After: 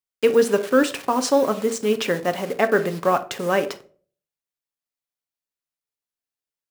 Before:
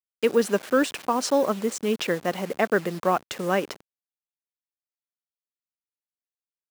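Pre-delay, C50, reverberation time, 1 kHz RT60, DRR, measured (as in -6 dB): 7 ms, 15.5 dB, 0.45 s, 0.35 s, 8.0 dB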